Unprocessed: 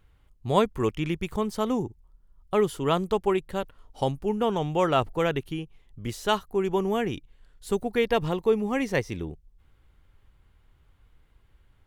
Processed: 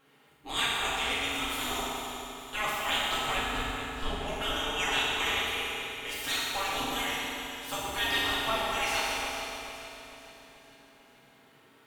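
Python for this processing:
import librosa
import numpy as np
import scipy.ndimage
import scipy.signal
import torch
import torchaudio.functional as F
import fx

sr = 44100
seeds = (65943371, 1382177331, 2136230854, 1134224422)

p1 = fx.spec_gate(x, sr, threshold_db=-20, keep='weak')
p2 = fx.riaa(p1, sr, side='playback', at=(3.37, 4.25))
p3 = 10.0 ** (-36.5 / 20.0) * np.tanh(p2 / 10.0 ** (-36.5 / 20.0))
p4 = p2 + F.gain(torch.from_numpy(p3), -7.0).numpy()
p5 = fx.echo_feedback(p4, sr, ms=438, feedback_pct=48, wet_db=-11.0)
y = fx.rev_fdn(p5, sr, rt60_s=2.9, lf_ratio=0.7, hf_ratio=0.8, size_ms=22.0, drr_db=-9.0)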